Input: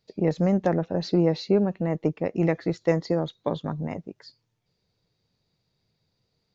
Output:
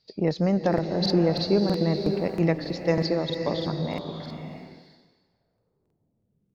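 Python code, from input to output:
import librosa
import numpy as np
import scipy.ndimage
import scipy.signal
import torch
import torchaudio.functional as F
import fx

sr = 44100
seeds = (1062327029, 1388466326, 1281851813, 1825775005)

y = fx.filter_sweep_lowpass(x, sr, from_hz=4800.0, to_hz=210.0, start_s=4.08, end_s=6.29, q=3.9)
y = fx.buffer_crackle(y, sr, first_s=0.69, period_s=0.32, block=2048, kind='repeat')
y = fx.rev_bloom(y, sr, seeds[0], attack_ms=610, drr_db=5.5)
y = y * librosa.db_to_amplitude(-1.0)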